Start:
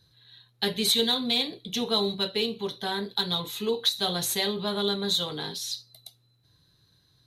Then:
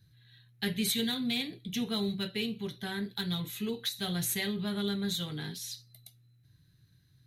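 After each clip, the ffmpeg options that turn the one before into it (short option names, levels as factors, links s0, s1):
-af "equalizer=f=125:t=o:w=1:g=5,equalizer=f=500:t=o:w=1:g=-10,equalizer=f=1000:t=o:w=1:g=-12,equalizer=f=2000:t=o:w=1:g=4,equalizer=f=4000:t=o:w=1:g=-10,equalizer=f=8000:t=o:w=1:g=-3"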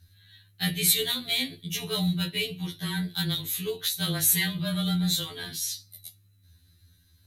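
-af "aemphasis=mode=production:type=cd,afreqshift=-19,afftfilt=real='re*2*eq(mod(b,4),0)':imag='im*2*eq(mod(b,4),0)':win_size=2048:overlap=0.75,volume=2"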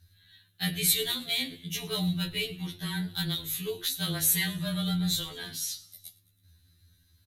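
-filter_complex "[0:a]bandreject=f=51.07:t=h:w=4,bandreject=f=102.14:t=h:w=4,bandreject=f=153.21:t=h:w=4,bandreject=f=204.28:t=h:w=4,bandreject=f=255.35:t=h:w=4,bandreject=f=306.42:t=h:w=4,bandreject=f=357.49:t=h:w=4,bandreject=f=408.56:t=h:w=4,bandreject=f=459.63:t=h:w=4,bandreject=f=510.7:t=h:w=4,asplit=5[s0][s1][s2][s3][s4];[s1]adelay=107,afreqshift=-85,volume=0.0891[s5];[s2]adelay=214,afreqshift=-170,volume=0.049[s6];[s3]adelay=321,afreqshift=-255,volume=0.0269[s7];[s4]adelay=428,afreqshift=-340,volume=0.0148[s8];[s0][s5][s6][s7][s8]amix=inputs=5:normalize=0,volume=0.75"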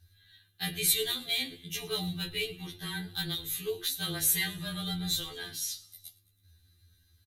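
-af "aecho=1:1:2.5:0.46,volume=0.75"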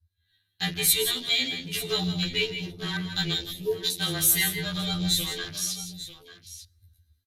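-filter_complex "[0:a]afwtdn=0.00708,dynaudnorm=f=160:g=3:m=3.98,asplit=2[s0][s1];[s1]aecho=0:1:163|178|893:0.282|0.211|0.2[s2];[s0][s2]amix=inputs=2:normalize=0,volume=0.531"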